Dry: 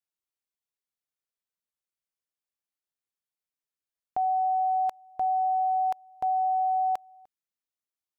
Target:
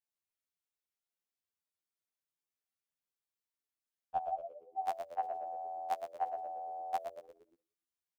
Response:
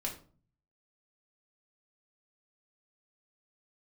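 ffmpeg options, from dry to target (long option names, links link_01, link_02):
-filter_complex "[0:a]agate=range=-14dB:threshold=-41dB:ratio=16:detection=peak,alimiter=level_in=5.5dB:limit=-24dB:level=0:latency=1,volume=-5.5dB,asplit=3[link_01][link_02][link_03];[link_01]afade=type=out:start_time=4.33:duration=0.02[link_04];[link_02]asuperpass=centerf=320:order=8:qfactor=1.2,afade=type=in:start_time=4.33:duration=0.02,afade=type=out:start_time=4.78:duration=0.02[link_05];[link_03]afade=type=in:start_time=4.78:duration=0.02[link_06];[link_04][link_05][link_06]amix=inputs=3:normalize=0,asplit=2[link_07][link_08];[link_08]asplit=5[link_09][link_10][link_11][link_12][link_13];[link_09]adelay=116,afreqshift=-86,volume=-8dB[link_14];[link_10]adelay=232,afreqshift=-172,volume=-15.7dB[link_15];[link_11]adelay=348,afreqshift=-258,volume=-23.5dB[link_16];[link_12]adelay=464,afreqshift=-344,volume=-31.2dB[link_17];[link_13]adelay=580,afreqshift=-430,volume=-39dB[link_18];[link_14][link_15][link_16][link_17][link_18]amix=inputs=5:normalize=0[link_19];[link_07][link_19]amix=inputs=2:normalize=0,afftfilt=real='re*2*eq(mod(b,4),0)':imag='im*2*eq(mod(b,4),0)':win_size=2048:overlap=0.75,volume=11.5dB"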